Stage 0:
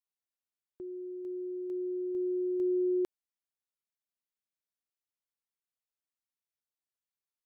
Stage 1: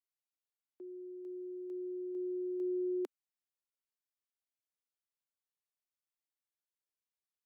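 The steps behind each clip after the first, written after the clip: steep high-pass 250 Hz 48 dB/octave; trim -6 dB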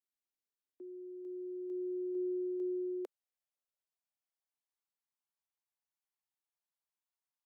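high-pass sweep 250 Hz -> 830 Hz, 0.99–4.75 s; trim -5 dB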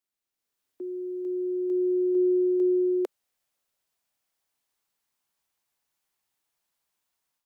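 level rider gain up to 9 dB; trim +4.5 dB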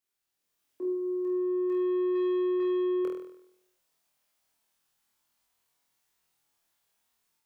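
saturation -30 dBFS, distortion -9 dB; flutter echo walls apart 4.2 m, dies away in 0.75 s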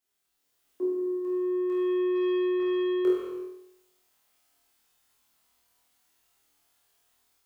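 gated-style reverb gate 410 ms falling, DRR -3 dB; trim +1.5 dB

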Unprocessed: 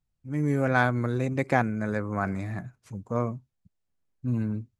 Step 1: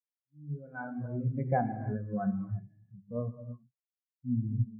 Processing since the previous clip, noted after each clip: fade-in on the opening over 1.45 s; gated-style reverb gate 370 ms flat, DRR 0.5 dB; spectral contrast expander 2.5:1; trim -8 dB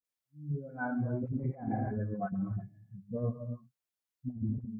dynamic bell 330 Hz, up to +4 dB, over -42 dBFS, Q 0.79; compressor with a negative ratio -33 dBFS, ratio -0.5; phase dispersion highs, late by 47 ms, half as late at 670 Hz

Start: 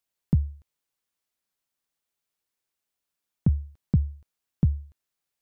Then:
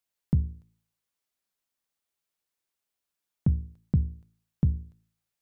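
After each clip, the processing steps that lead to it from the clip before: de-hum 55.45 Hz, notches 9; trim -1.5 dB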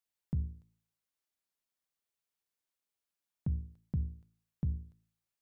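peak limiter -20.5 dBFS, peak gain reduction 6 dB; trim -5.5 dB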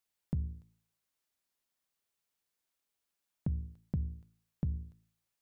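compression, threshold -34 dBFS, peak gain reduction 5.5 dB; trim +4 dB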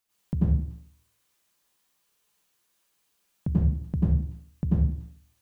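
plate-style reverb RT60 0.54 s, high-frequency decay 1×, pre-delay 80 ms, DRR -8.5 dB; trim +4.5 dB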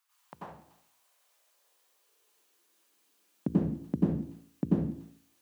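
high-pass sweep 1.1 kHz -> 280 Hz, 0.08–2.94 s; trim +1.5 dB

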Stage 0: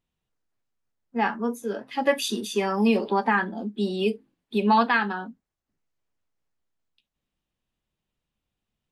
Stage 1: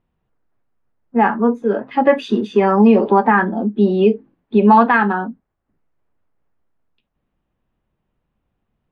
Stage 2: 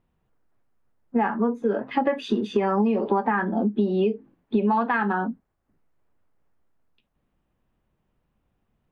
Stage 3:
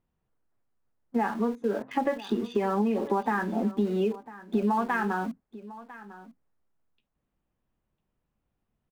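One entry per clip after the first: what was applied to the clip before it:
low-pass 1.5 kHz 12 dB/octave; in parallel at +3 dB: peak limiter -17 dBFS, peak gain reduction 7.5 dB; on the sum: trim +4.5 dB
compression 8:1, threshold -19 dBFS, peak gain reduction 12.5 dB
in parallel at -7 dB: small samples zeroed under -30 dBFS; on the sum: delay 1000 ms -17.5 dB; trim -7.5 dB

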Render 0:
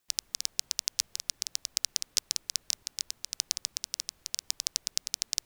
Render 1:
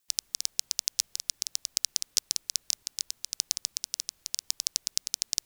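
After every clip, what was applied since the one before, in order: treble shelf 2.8 kHz +9.5 dB; trim -6 dB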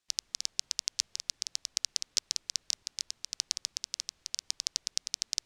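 low-pass 5.8 kHz 12 dB/octave

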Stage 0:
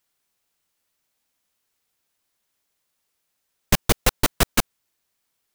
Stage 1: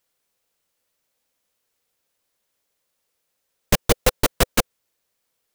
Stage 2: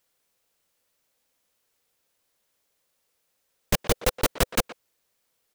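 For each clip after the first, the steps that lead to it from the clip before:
peaking EQ 510 Hz +8 dB 0.44 oct
level held to a coarse grid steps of 11 dB; speakerphone echo 120 ms, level -15 dB; trim +2.5 dB

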